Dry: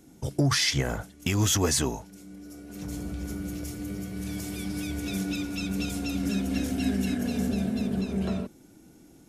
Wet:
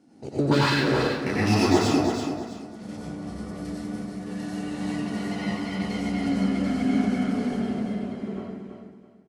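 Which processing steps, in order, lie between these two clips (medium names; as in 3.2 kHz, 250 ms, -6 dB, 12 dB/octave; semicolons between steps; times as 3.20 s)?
fade out at the end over 2.27 s; high-pass 510 Hz 12 dB/octave; tilt EQ -4 dB/octave; in parallel at -6 dB: crossover distortion -35 dBFS; on the sum: formant shift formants -4 st; on a send: feedback delay 330 ms, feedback 27%, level -7 dB; on the sum: plate-style reverb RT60 0.74 s, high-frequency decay 0.55×, pre-delay 80 ms, DRR -5.5 dB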